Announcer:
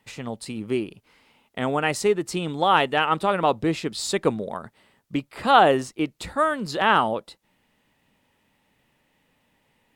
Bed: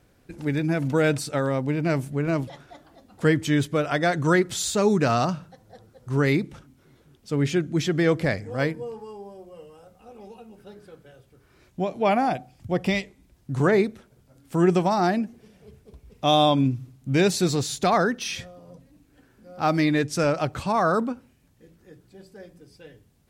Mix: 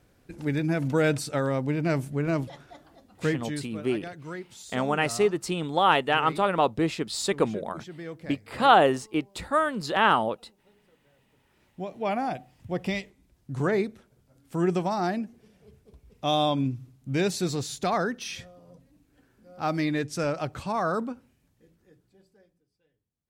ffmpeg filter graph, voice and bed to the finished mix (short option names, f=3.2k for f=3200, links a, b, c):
-filter_complex "[0:a]adelay=3150,volume=-2dB[a];[1:a]volume=10.5dB,afade=t=out:st=2.92:d=0.77:silence=0.158489,afade=t=in:st=10.98:d=1.42:silence=0.237137,afade=t=out:st=21.35:d=1.3:silence=0.0891251[b];[a][b]amix=inputs=2:normalize=0"